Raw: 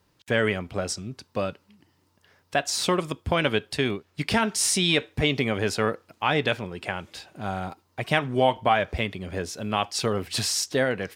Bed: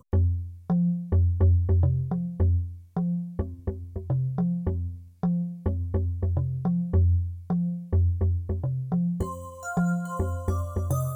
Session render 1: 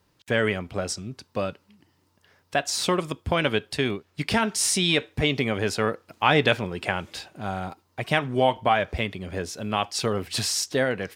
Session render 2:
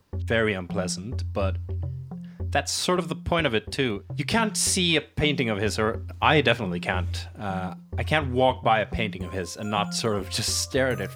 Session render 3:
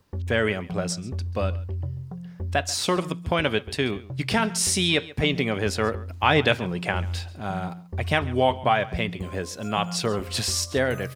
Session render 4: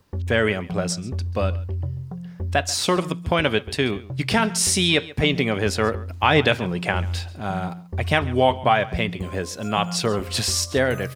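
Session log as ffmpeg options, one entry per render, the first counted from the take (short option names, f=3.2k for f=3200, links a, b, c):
-filter_complex "[0:a]asplit=3[a][b][c];[a]atrim=end=6.082[d];[b]atrim=start=6.078:end=7.282,asetpts=PTS-STARTPTS,volume=4dB[e];[c]atrim=start=7.278[f];[d][e]acrossfade=d=0.004:c1=hsin:c2=hsin[g];[g][f]acrossfade=d=0.004:c1=hsin:c2=hsin"
-filter_complex "[1:a]volume=-9dB[a];[0:a][a]amix=inputs=2:normalize=0"
-af "aecho=1:1:137:0.106"
-af "volume=3dB,alimiter=limit=-3dB:level=0:latency=1"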